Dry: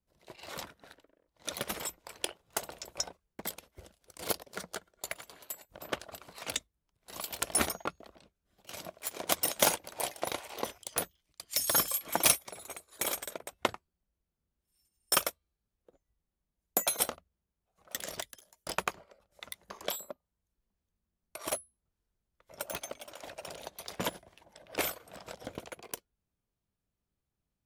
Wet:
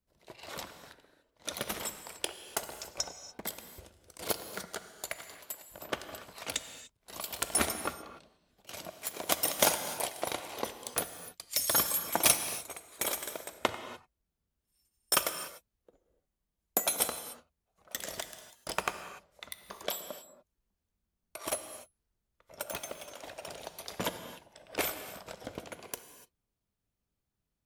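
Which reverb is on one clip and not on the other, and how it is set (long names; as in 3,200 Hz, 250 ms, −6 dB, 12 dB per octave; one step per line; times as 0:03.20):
reverb whose tail is shaped and stops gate 320 ms flat, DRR 9 dB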